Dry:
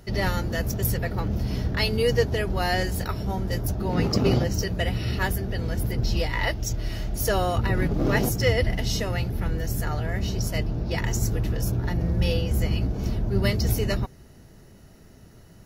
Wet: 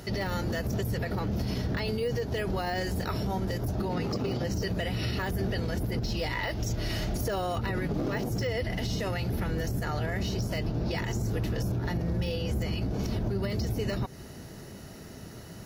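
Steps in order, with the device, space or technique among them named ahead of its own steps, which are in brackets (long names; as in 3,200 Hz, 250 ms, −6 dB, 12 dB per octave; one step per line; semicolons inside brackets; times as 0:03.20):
broadcast voice chain (high-pass filter 110 Hz 6 dB per octave; de-essing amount 90%; downward compressor, threshold −32 dBFS, peak gain reduction 13.5 dB; parametric band 4,400 Hz +2 dB; brickwall limiter −30 dBFS, peak gain reduction 8 dB)
level +8 dB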